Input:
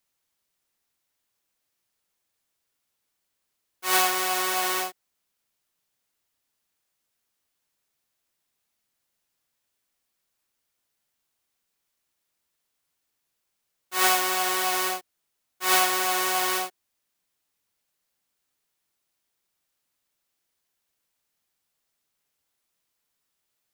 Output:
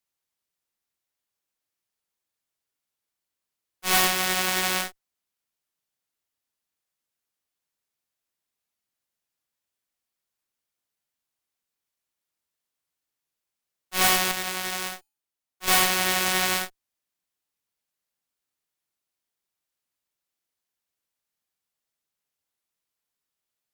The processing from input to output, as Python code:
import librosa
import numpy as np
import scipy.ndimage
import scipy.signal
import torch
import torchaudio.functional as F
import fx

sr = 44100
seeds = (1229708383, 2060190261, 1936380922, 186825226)

y = fx.comb_fb(x, sr, f0_hz=280.0, decay_s=0.48, harmonics='odd', damping=0.0, mix_pct=40, at=(14.31, 15.68))
y = fx.cheby_harmonics(y, sr, harmonics=(7, 8), levels_db=(-22, -12), full_scale_db=-4.5)